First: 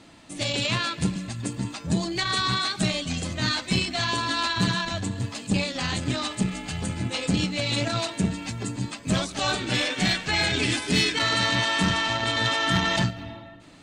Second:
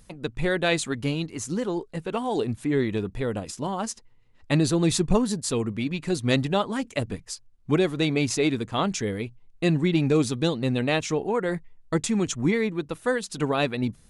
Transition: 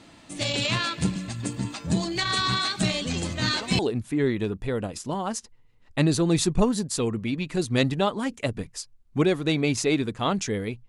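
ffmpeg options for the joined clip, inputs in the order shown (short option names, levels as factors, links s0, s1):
-filter_complex "[1:a]asplit=2[s0][s1];[0:a]apad=whole_dur=10.88,atrim=end=10.88,atrim=end=3.792[s2];[s1]atrim=start=2.318:end=9.41[s3];[s0]atrim=start=1.54:end=2.32,asetpts=PTS-STARTPTS,volume=0.282,afade=t=in:d=0.004:c=hsin,afade=t=out:st=0.776:d=0.004:c=hsin,adelay=3010[s4];[s2][s3]acrossfade=d=0.004:c1=hsin:c2=hsin[s5];[s5][s4]amix=inputs=2:normalize=0"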